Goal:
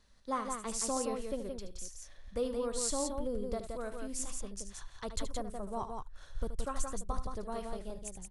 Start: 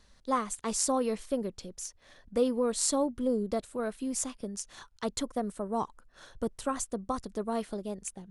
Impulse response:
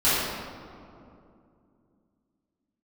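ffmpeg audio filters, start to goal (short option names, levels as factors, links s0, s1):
-filter_complex "[0:a]asubboost=boost=11.5:cutoff=71,asplit=2[s0][s1];[s1]aecho=0:1:75.8|172:0.282|0.562[s2];[s0][s2]amix=inputs=2:normalize=0,volume=0.501"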